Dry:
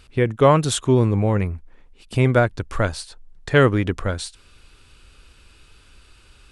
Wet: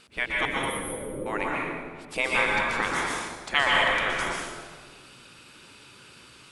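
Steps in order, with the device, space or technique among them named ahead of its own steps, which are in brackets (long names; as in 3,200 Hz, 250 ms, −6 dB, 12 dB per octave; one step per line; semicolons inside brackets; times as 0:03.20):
gate on every frequency bin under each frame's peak −15 dB weak
0:00.45–0:01.26: Chebyshev band-stop filter 530–9,200 Hz, order 5
stairwell (convolution reverb RT60 1.6 s, pre-delay 114 ms, DRR −4 dB)
dynamic equaliser 2,600 Hz, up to +3 dB, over −38 dBFS, Q 0.77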